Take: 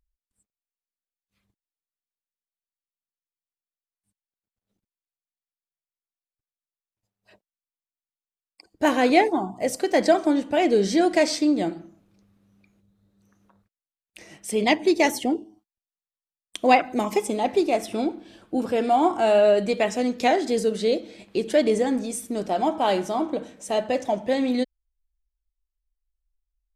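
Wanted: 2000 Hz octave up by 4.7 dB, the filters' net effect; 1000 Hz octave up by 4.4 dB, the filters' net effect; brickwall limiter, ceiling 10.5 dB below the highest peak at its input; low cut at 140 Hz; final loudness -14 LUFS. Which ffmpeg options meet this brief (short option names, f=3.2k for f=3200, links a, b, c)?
-af "highpass=140,equalizer=f=1k:t=o:g=6,equalizer=f=2k:t=o:g=4,volume=8.5dB,alimiter=limit=-2dB:level=0:latency=1"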